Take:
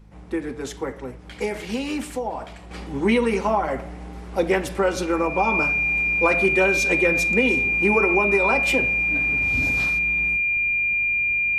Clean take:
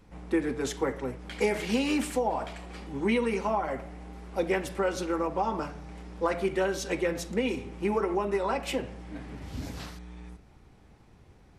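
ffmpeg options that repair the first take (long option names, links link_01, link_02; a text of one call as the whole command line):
ffmpeg -i in.wav -af "bandreject=frequency=52.7:width_type=h:width=4,bandreject=frequency=105.4:width_type=h:width=4,bandreject=frequency=158.1:width_type=h:width=4,bandreject=frequency=210.8:width_type=h:width=4,bandreject=frequency=2400:width=30,asetnsamples=nb_out_samples=441:pad=0,asendcmd='2.71 volume volume -7dB',volume=0dB" out.wav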